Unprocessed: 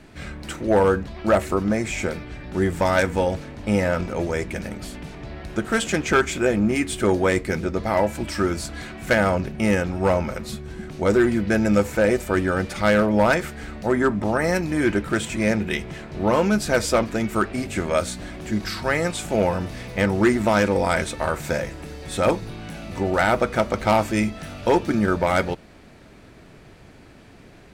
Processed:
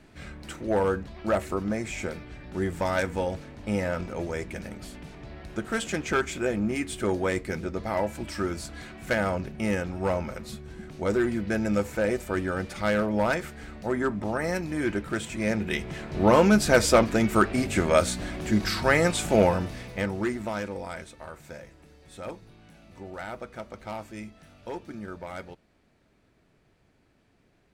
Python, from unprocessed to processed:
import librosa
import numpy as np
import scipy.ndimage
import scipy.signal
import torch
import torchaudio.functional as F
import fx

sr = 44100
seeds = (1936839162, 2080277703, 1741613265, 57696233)

y = fx.gain(x, sr, db=fx.line((15.36, -7.0), (16.2, 1.0), (19.39, 1.0), (20.14, -9.5), (21.16, -18.0)))